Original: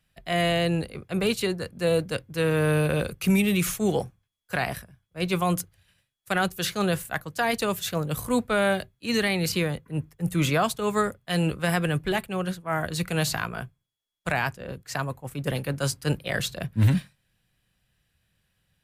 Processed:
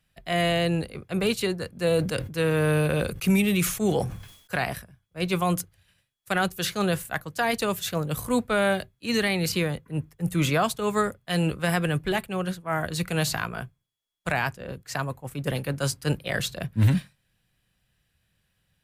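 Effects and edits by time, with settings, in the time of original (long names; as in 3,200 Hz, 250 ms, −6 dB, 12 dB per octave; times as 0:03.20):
0:01.79–0:04.56: level that may fall only so fast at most 80 dB per second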